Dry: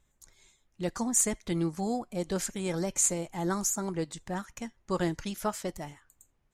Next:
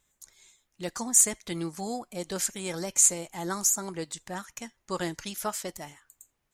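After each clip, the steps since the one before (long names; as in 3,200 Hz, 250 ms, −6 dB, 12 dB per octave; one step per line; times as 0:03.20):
spectral tilt +2 dB per octave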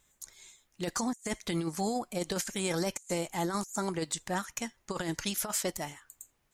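compressor whose output falls as the input rises −33 dBFS, ratio −0.5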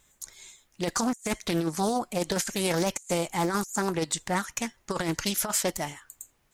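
highs frequency-modulated by the lows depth 0.29 ms
level +5.5 dB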